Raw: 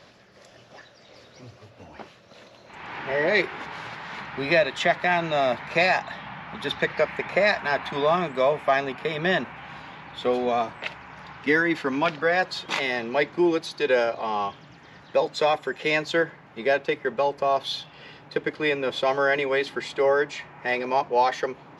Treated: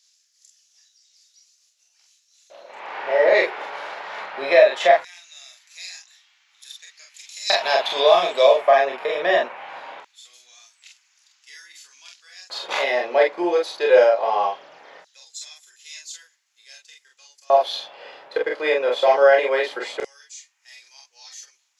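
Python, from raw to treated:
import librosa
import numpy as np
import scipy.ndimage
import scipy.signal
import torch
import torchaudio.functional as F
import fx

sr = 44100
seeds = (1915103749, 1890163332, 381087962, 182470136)

y = fx.filter_lfo_highpass(x, sr, shape='square', hz=0.2, low_hz=560.0, high_hz=6900.0, q=2.6)
y = fx.high_shelf_res(y, sr, hz=2500.0, db=10.0, q=1.5, at=(7.14, 8.57))
y = fx.room_early_taps(y, sr, ms=(29, 45), db=(-5.5, -3.0))
y = y * librosa.db_to_amplitude(-1.0)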